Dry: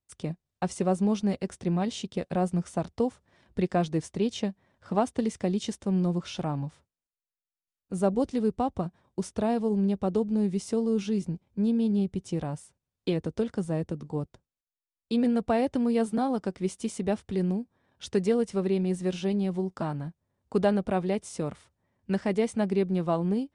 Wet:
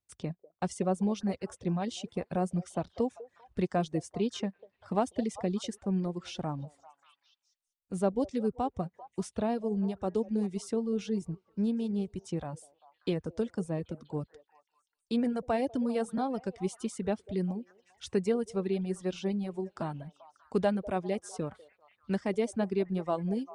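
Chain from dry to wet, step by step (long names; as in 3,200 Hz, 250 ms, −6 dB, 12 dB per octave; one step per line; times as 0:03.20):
echo through a band-pass that steps 196 ms, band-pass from 540 Hz, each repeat 0.7 octaves, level −10 dB
reverb reduction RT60 1.1 s
level −3 dB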